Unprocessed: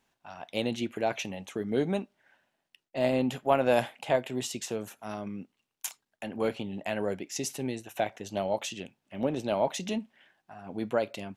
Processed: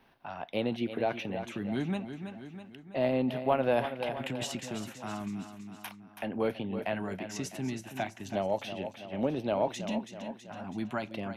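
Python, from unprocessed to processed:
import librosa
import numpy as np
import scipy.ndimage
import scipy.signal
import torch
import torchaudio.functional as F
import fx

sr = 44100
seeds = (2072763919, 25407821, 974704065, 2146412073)

y = fx.high_shelf(x, sr, hz=3900.0, db=-8.0)
y = fx.over_compress(y, sr, threshold_db=-37.0, ratio=-1.0, at=(3.84, 4.56))
y = fx.filter_lfo_notch(y, sr, shape='square', hz=0.36, low_hz=490.0, high_hz=7200.0, q=0.84)
y = fx.echo_feedback(y, sr, ms=326, feedback_pct=43, wet_db=-11.5)
y = fx.band_squash(y, sr, depth_pct=40)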